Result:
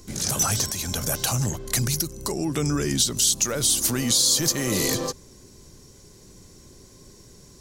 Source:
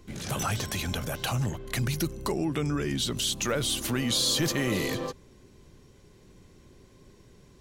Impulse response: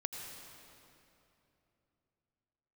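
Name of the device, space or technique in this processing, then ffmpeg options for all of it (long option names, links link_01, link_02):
over-bright horn tweeter: -af "highshelf=frequency=4100:width_type=q:width=1.5:gain=9.5,alimiter=limit=-14dB:level=0:latency=1:release=388,volume=4.5dB"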